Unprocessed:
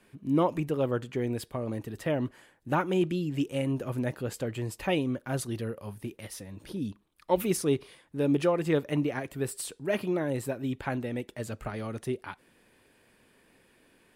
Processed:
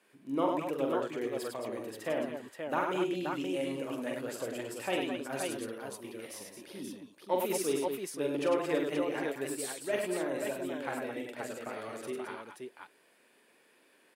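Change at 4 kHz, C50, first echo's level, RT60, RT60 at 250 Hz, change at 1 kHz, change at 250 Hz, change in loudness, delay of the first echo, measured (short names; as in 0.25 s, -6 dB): -1.0 dB, none, -4.5 dB, none, none, -1.0 dB, -5.5 dB, -4.0 dB, 44 ms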